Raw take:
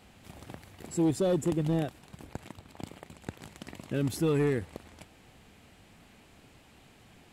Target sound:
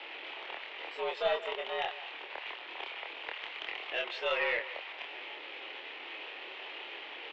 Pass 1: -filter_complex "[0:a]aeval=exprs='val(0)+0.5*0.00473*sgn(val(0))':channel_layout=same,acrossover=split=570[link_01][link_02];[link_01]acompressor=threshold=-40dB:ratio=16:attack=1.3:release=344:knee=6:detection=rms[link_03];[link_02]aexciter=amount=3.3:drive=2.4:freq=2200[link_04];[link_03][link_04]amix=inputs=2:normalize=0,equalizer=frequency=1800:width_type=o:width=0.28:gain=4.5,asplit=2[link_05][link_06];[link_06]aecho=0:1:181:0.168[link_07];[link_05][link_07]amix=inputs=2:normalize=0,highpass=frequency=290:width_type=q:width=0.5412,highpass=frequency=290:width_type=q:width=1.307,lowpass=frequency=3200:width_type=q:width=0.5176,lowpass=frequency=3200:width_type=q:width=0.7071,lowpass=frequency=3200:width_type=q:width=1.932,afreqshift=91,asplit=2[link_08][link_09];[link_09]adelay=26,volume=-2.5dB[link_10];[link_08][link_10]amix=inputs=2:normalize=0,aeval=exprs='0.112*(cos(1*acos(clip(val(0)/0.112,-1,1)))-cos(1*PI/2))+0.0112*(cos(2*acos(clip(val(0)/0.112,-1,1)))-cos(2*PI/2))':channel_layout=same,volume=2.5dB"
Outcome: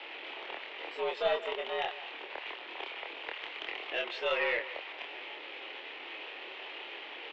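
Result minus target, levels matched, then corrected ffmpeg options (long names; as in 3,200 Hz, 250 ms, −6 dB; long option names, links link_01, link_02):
downward compressor: peak gain reduction −5.5 dB
-filter_complex "[0:a]aeval=exprs='val(0)+0.5*0.00473*sgn(val(0))':channel_layout=same,acrossover=split=570[link_01][link_02];[link_01]acompressor=threshold=-46dB:ratio=16:attack=1.3:release=344:knee=6:detection=rms[link_03];[link_02]aexciter=amount=3.3:drive=2.4:freq=2200[link_04];[link_03][link_04]amix=inputs=2:normalize=0,equalizer=frequency=1800:width_type=o:width=0.28:gain=4.5,asplit=2[link_05][link_06];[link_06]aecho=0:1:181:0.168[link_07];[link_05][link_07]amix=inputs=2:normalize=0,highpass=frequency=290:width_type=q:width=0.5412,highpass=frequency=290:width_type=q:width=1.307,lowpass=frequency=3200:width_type=q:width=0.5176,lowpass=frequency=3200:width_type=q:width=0.7071,lowpass=frequency=3200:width_type=q:width=1.932,afreqshift=91,asplit=2[link_08][link_09];[link_09]adelay=26,volume=-2.5dB[link_10];[link_08][link_10]amix=inputs=2:normalize=0,aeval=exprs='0.112*(cos(1*acos(clip(val(0)/0.112,-1,1)))-cos(1*PI/2))+0.0112*(cos(2*acos(clip(val(0)/0.112,-1,1)))-cos(2*PI/2))':channel_layout=same,volume=2.5dB"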